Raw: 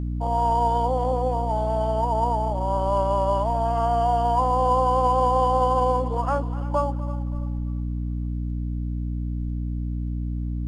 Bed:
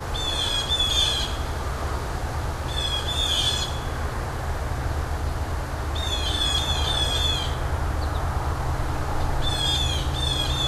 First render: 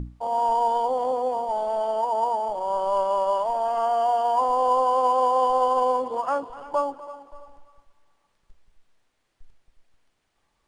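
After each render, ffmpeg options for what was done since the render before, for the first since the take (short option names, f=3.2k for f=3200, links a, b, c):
-af "bandreject=f=60:t=h:w=6,bandreject=f=120:t=h:w=6,bandreject=f=180:t=h:w=6,bandreject=f=240:t=h:w=6,bandreject=f=300:t=h:w=6"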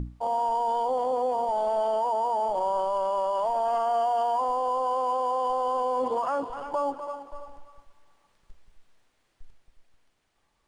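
-af "dynaudnorm=f=390:g=9:m=3.5dB,alimiter=limit=-19dB:level=0:latency=1:release=32"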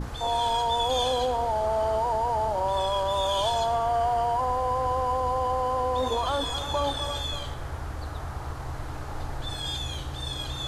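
-filter_complex "[1:a]volume=-9dB[a];[0:a][a]amix=inputs=2:normalize=0"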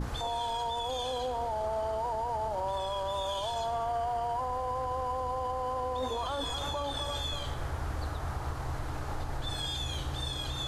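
-af "alimiter=level_in=1dB:limit=-24dB:level=0:latency=1:release=120,volume=-1dB"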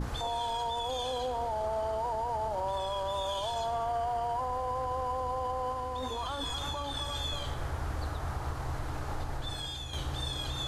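-filter_complex "[0:a]asettb=1/sr,asplit=3[a][b][c];[a]atrim=end=5.724[d];[b]atrim=start=5.72:end=7.2,asetpts=PTS-STARTPTS,afade=t=in:d=0.004:c=qsin,afade=t=out:st=1.476:d=0.004:c=qsin,equalizer=f=560:w=1.5:g=-5.5[e];[c]atrim=start=7.196[f];[d][e]acrossfade=d=0.004:c1=hsin:c2=qsin[g];[g][f]acrossfade=d=0.004:c1=qsin:c2=hsin,asplit=2[h][i];[h]atrim=end=9.93,asetpts=PTS-STARTPTS,afade=t=out:st=9.24:d=0.69:silence=0.473151[j];[i]atrim=start=9.93,asetpts=PTS-STARTPTS,afade=t=in:d=0.004:c=hsin:silence=0.473151[k];[j][k]concat=n=2:v=0:a=1"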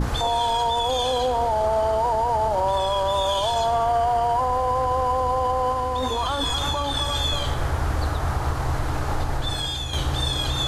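-af "volume=11dB"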